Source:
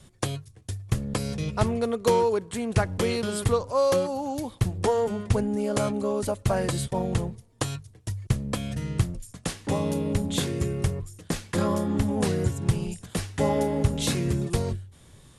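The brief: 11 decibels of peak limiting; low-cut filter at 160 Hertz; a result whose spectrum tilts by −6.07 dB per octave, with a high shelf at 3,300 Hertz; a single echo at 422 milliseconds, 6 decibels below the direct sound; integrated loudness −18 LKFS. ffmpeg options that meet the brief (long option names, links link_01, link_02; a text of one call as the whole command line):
ffmpeg -i in.wav -af "highpass=160,highshelf=frequency=3300:gain=-6,alimiter=limit=-20.5dB:level=0:latency=1,aecho=1:1:422:0.501,volume=12.5dB" out.wav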